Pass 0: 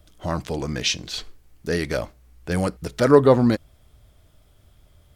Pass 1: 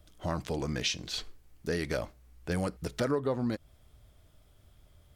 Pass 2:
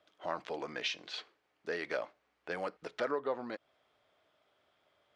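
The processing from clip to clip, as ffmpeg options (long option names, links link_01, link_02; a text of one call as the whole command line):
ffmpeg -i in.wav -af "acompressor=threshold=-22dB:ratio=6,volume=-5dB" out.wav
ffmpeg -i in.wav -af "highpass=520,lowpass=3000" out.wav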